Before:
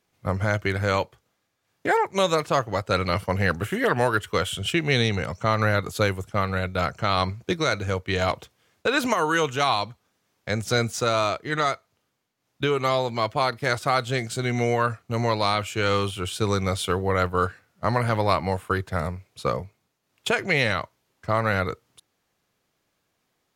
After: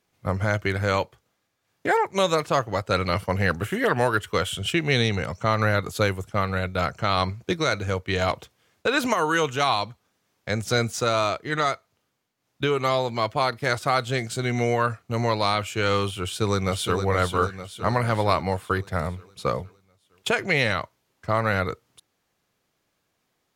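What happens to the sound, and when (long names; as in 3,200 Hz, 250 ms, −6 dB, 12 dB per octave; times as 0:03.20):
0:16.21–0:17.00: delay throw 460 ms, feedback 55%, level −7 dB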